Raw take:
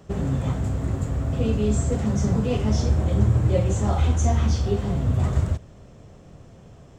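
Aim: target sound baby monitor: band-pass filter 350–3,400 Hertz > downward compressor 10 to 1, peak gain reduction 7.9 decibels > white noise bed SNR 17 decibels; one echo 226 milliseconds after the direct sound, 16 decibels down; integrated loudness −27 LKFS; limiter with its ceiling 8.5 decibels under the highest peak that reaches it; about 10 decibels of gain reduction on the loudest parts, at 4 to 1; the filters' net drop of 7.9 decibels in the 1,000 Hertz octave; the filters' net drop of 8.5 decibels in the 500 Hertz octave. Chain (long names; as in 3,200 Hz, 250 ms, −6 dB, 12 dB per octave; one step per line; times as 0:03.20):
parametric band 500 Hz −7 dB
parametric band 1,000 Hz −8 dB
downward compressor 4 to 1, threshold −27 dBFS
brickwall limiter −27 dBFS
band-pass filter 350–3,400 Hz
single-tap delay 226 ms −16 dB
downward compressor 10 to 1, threshold −46 dBFS
white noise bed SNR 17 dB
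level +24.5 dB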